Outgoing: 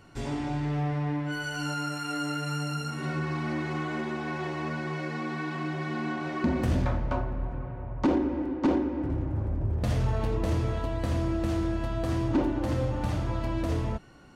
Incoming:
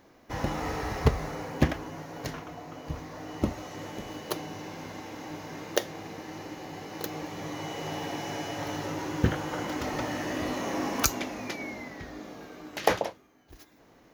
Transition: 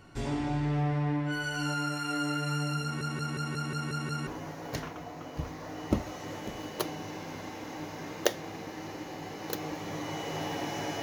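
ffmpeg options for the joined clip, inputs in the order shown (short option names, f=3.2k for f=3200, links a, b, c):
-filter_complex "[0:a]apad=whole_dur=11.02,atrim=end=11.02,asplit=8[a][b][c][d][e][f][g][h];[a]atrim=end=3.012[i];[b]atrim=start=2.828:end=3.012[j];[c]atrim=start=2.828:end=3.012[k];[d]atrim=start=2.828:end=3.012[l];[e]atrim=start=2.828:end=3.012[m];[f]atrim=start=2.828:end=3.012[n];[g]atrim=start=2.828:end=3.012[o];[h]atrim=start=2.828:end=3.012[p];[1:a]atrim=start=1.778:end=8.53[q];[i][j]acrossfade=d=0.004:c1=hsin:c2=hsin[r];[r][k]acrossfade=d=0.004:c1=hsin:c2=hsin[s];[s][l]acrossfade=d=0.004:c1=hsin:c2=hsin[t];[t][m]acrossfade=d=0.004:c1=hsin:c2=hsin[u];[u][n]acrossfade=d=0.004:c1=hsin:c2=hsin[v];[v][o]acrossfade=d=0.004:c1=hsin:c2=hsin[w];[w][p]acrossfade=d=0.004:c1=hsin:c2=hsin[x];[x][q]acrossfade=d=0.004:c1=hsin:c2=hsin"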